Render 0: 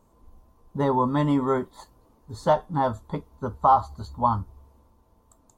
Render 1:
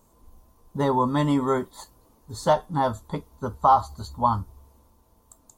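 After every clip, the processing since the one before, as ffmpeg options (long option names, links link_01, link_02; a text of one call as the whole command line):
ffmpeg -i in.wav -af "highshelf=frequency=4100:gain=11" out.wav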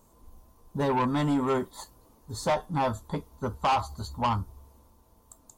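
ffmpeg -i in.wav -af "asoftclip=type=tanh:threshold=-20.5dB" out.wav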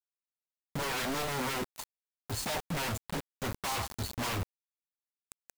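ffmpeg -i in.wav -af "acrusher=bits=5:mix=0:aa=0.000001,aeval=exprs='0.0355*(abs(mod(val(0)/0.0355+3,4)-2)-1)':channel_layout=same" out.wav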